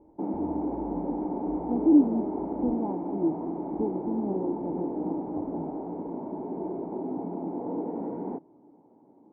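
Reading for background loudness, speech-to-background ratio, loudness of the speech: -33.0 LUFS, 4.0 dB, -29.0 LUFS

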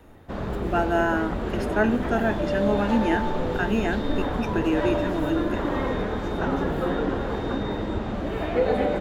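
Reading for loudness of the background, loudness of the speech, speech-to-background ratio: -27.5 LUFS, -26.5 LUFS, 1.0 dB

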